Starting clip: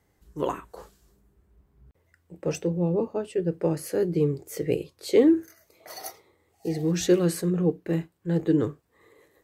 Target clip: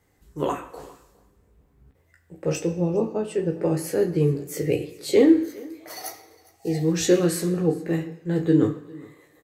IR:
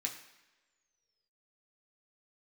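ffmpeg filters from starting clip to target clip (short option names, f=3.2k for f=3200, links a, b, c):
-filter_complex "[0:a]aecho=1:1:408:0.075,asplit=2[a][b];[1:a]atrim=start_sample=2205,adelay=15[c];[b][c]afir=irnorm=-1:irlink=0,volume=-2dB[d];[a][d]amix=inputs=2:normalize=0,volume=1.5dB"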